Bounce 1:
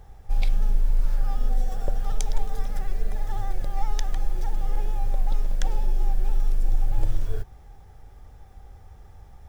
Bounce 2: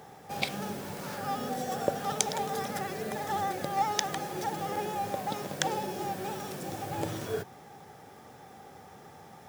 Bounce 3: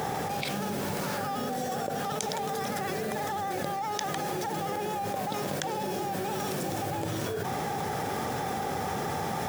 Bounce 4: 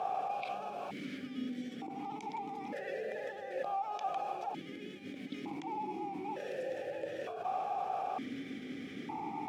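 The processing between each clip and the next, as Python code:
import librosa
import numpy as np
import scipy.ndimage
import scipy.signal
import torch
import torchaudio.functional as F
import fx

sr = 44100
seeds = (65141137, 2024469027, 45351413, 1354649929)

y1 = scipy.signal.sosfilt(scipy.signal.butter(4, 160.0, 'highpass', fs=sr, output='sos'), x)
y1 = F.gain(torch.from_numpy(y1), 8.0).numpy()
y2 = fx.env_flatten(y1, sr, amount_pct=100)
y2 = F.gain(torch.from_numpy(y2), -8.0).numpy()
y3 = fx.vowel_held(y2, sr, hz=1.1)
y3 = F.gain(torch.from_numpy(y3), 3.5).numpy()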